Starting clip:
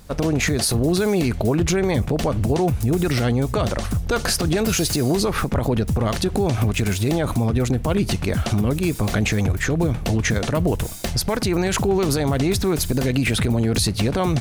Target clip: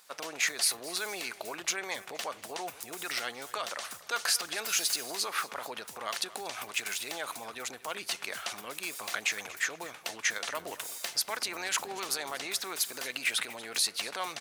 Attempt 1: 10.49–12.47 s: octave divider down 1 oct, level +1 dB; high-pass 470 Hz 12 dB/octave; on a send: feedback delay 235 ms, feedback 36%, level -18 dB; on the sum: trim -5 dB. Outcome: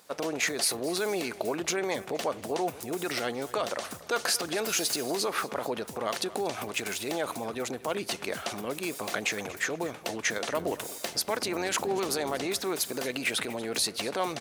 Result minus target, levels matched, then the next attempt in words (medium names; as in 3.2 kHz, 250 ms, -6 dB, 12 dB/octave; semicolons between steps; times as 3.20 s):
500 Hz band +9.0 dB
10.49–12.47 s: octave divider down 1 oct, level +1 dB; high-pass 1.1 kHz 12 dB/octave; on a send: feedback delay 235 ms, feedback 36%, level -18 dB; on the sum: trim -5 dB